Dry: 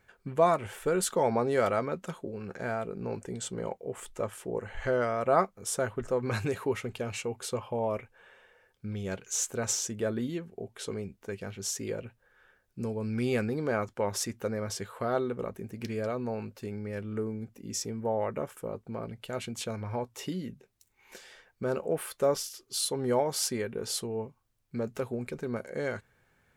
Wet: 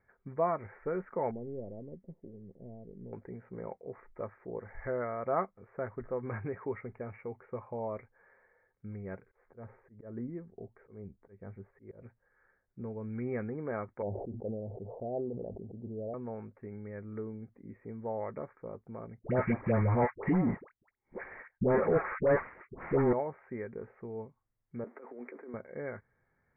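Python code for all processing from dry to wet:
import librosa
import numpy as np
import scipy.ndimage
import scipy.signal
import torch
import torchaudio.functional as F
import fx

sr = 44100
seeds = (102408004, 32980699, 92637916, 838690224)

y = fx.chain(x, sr, fx.halfwave_gain(db=-3.0),
    fx.gaussian_blur(sigma=19.0),
    fx.quant_companded(bits=8), at=(1.31, 3.13))
y = fx.chain(y, sr, fx.lowpass(hz=1000.0, slope=6),
    fx.low_shelf(hz=61.0, db=10.0),
    fx.auto_swell(attack_ms=193.0), at=(9.22, 12.02))
y = fx.chain(y, sr, fx.steep_lowpass(hz=780.0, slope=72),
    fx.sustainer(db_per_s=33.0), at=(14.02, 16.14))
y = fx.chain(y, sr, fx.leveller(passes=5),
    fx.dispersion(late='highs', ms=83.0, hz=820.0), at=(19.19, 23.13))
y = fx.chain(y, sr, fx.zero_step(step_db=-47.5),
    fx.steep_highpass(hz=250.0, slope=48),
    fx.over_compress(threshold_db=-39.0, ratio=-1.0), at=(24.84, 25.54))
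y = scipy.signal.sosfilt(scipy.signal.butter(16, 2200.0, 'lowpass', fs=sr, output='sos'), y)
y = fx.notch(y, sr, hz=1500.0, q=18.0)
y = y * 10.0 ** (-6.5 / 20.0)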